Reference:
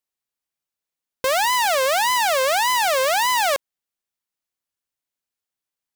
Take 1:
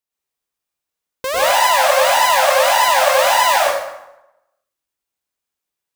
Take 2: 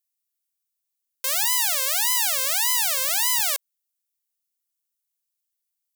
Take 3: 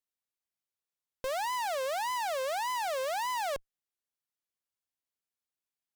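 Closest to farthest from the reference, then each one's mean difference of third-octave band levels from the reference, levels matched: 3, 1, 2; 3.0, 6.0, 8.5 decibels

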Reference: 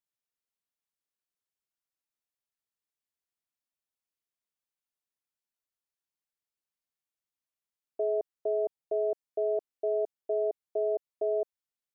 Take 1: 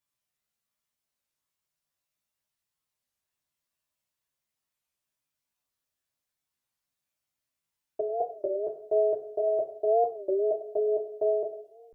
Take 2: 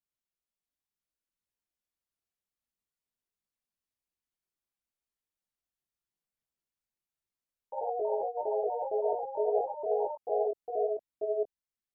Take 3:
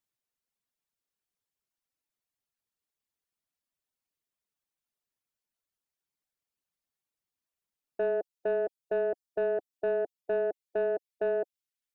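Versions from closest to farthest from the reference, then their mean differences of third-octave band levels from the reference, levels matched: 1, 2, 3; 2.0, 3.5, 6.5 decibels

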